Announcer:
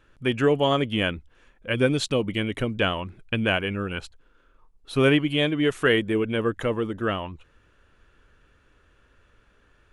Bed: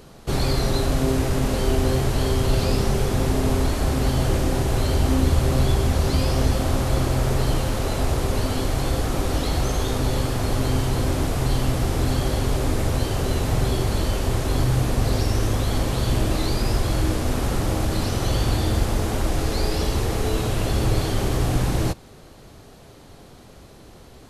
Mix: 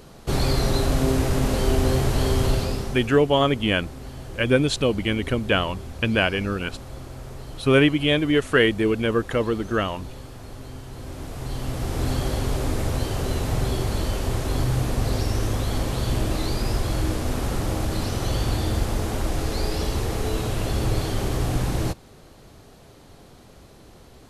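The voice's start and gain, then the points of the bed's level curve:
2.70 s, +2.5 dB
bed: 0:02.46 0 dB
0:03.25 −16.5 dB
0:10.85 −16.5 dB
0:12.07 −2.5 dB

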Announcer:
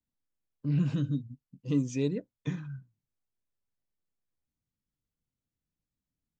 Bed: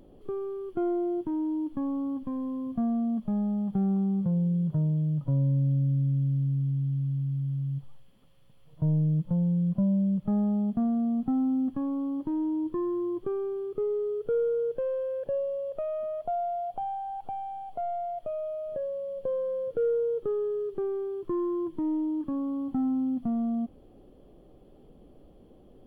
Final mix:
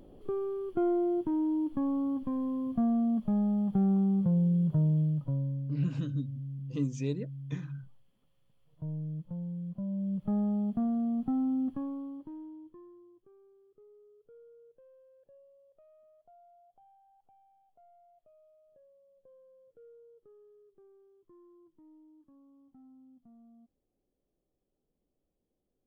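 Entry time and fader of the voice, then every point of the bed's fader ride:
5.05 s, −4.5 dB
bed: 0:05.01 0 dB
0:05.68 −12 dB
0:09.78 −12 dB
0:10.29 −3.5 dB
0:11.70 −3.5 dB
0:13.21 −29.5 dB

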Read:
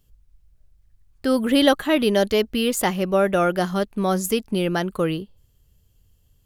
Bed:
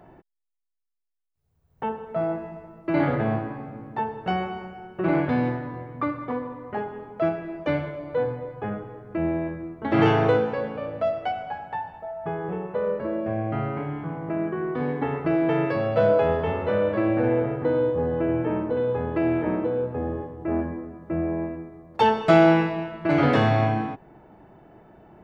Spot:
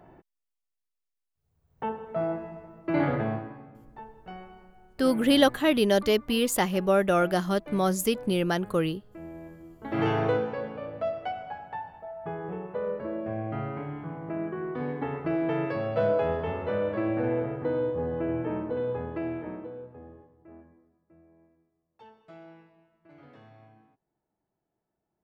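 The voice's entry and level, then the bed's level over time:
3.75 s, −3.5 dB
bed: 0:03.16 −3 dB
0:04.01 −17 dB
0:09.31 −17 dB
0:10.19 −5.5 dB
0:18.92 −5.5 dB
0:21.26 −33.5 dB

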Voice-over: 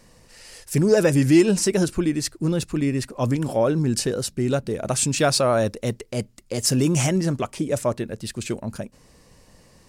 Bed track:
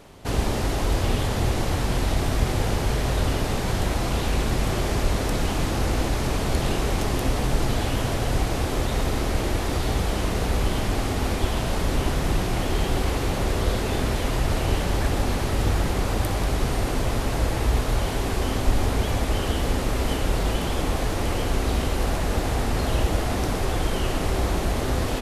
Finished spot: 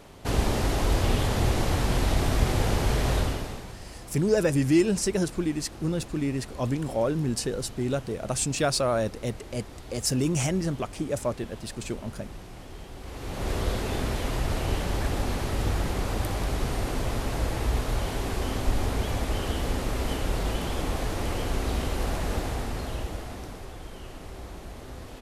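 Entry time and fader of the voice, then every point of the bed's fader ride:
3.40 s, −5.5 dB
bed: 0:03.16 −1 dB
0:03.80 −19 dB
0:12.97 −19 dB
0:13.51 −4.5 dB
0:22.33 −4.5 dB
0:23.76 −17 dB

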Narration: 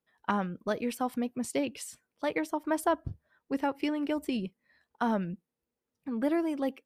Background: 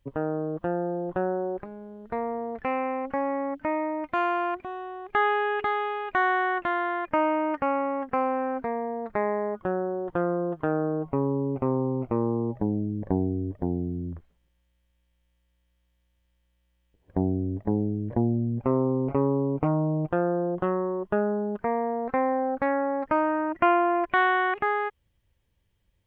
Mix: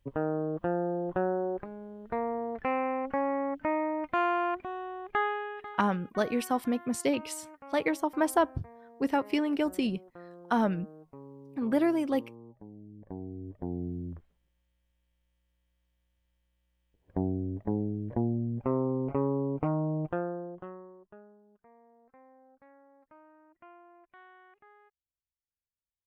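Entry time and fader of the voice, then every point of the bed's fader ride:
5.50 s, +2.5 dB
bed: 0:05.05 −2 dB
0:05.95 −22.5 dB
0:12.71 −22.5 dB
0:13.86 −5 dB
0:20.07 −5 dB
0:21.43 −33 dB

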